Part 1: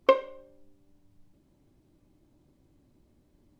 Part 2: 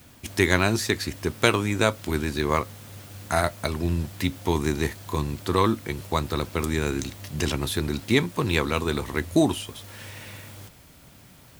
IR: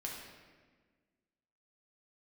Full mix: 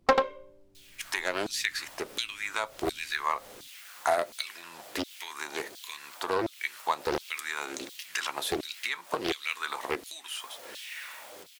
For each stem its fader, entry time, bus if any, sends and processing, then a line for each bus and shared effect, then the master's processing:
-1.0 dB, 0.00 s, no send, echo send -3.5 dB, dry
-1.5 dB, 0.75 s, no send, no echo send, HPF 94 Hz; compressor 10:1, threshold -24 dBFS, peak gain reduction 12.5 dB; LFO high-pass saw down 1.4 Hz 340–4000 Hz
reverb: off
echo: echo 90 ms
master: Doppler distortion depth 0.62 ms

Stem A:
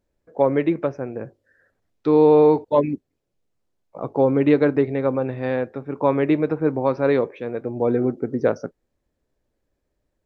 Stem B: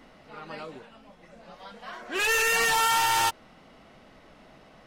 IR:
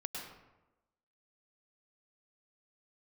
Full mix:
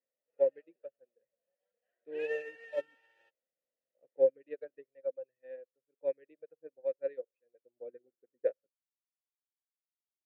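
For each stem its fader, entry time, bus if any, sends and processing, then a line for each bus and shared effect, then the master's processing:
-3.5 dB, 0.00 s, no send, reverb removal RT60 1.3 s; bell 350 Hz +2.5 dB 0.27 oct
+2.0 dB, 0.00 s, no send, high shelf 2100 Hz -7 dB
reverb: off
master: vowel filter e; upward expander 2.5:1, over -42 dBFS

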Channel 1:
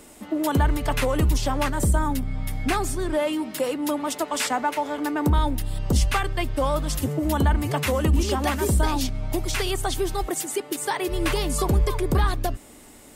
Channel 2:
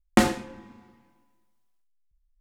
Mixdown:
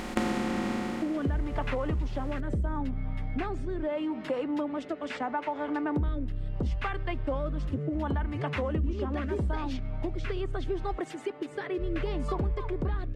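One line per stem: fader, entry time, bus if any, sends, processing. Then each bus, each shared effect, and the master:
-0.5 dB, 0.70 s, no send, LPF 2200 Hz 12 dB/oct; rotary speaker horn 0.75 Hz
0.73 s -4.5 dB -> 1.24 s -16.5 dB, 0.00 s, no send, per-bin compression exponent 0.2; high shelf 6600 Hz -9 dB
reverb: off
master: compressor 2.5:1, threshold -29 dBFS, peak gain reduction 9.5 dB

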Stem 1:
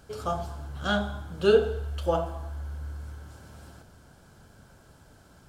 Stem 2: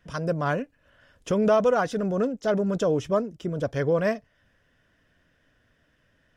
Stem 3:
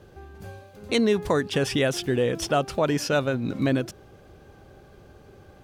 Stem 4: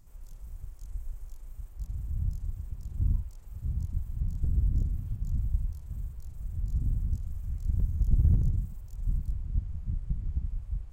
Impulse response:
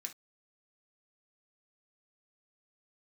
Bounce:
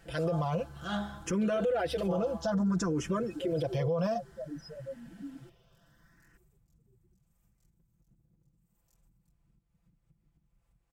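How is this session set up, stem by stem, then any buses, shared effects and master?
-7.5 dB, 0.00 s, no send, attack slew limiter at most 110 dB/s
+1.5 dB, 0.00 s, no send, endless phaser +0.59 Hz
-9.5 dB, 1.60 s, no send, loudest bins only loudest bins 1
-15.5 dB, 0.00 s, send -3.5 dB, HPF 300 Hz 6 dB/oct; compressor 10:1, threshold -50 dBFS, peak gain reduction 20.5 dB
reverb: on, pre-delay 3 ms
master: comb 5.9 ms, depth 85%; limiter -23 dBFS, peak gain reduction 15 dB

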